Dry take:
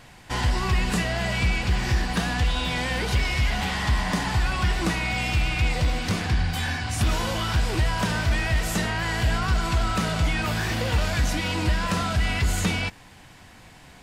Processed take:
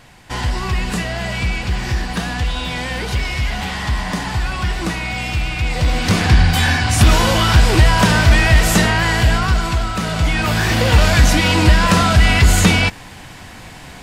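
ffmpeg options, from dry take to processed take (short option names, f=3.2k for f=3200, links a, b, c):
-af "volume=21.5dB,afade=t=in:st=5.66:d=0.66:silence=0.354813,afade=t=out:st=8.76:d=1.17:silence=0.334965,afade=t=in:st=9.93:d=1.12:silence=0.334965"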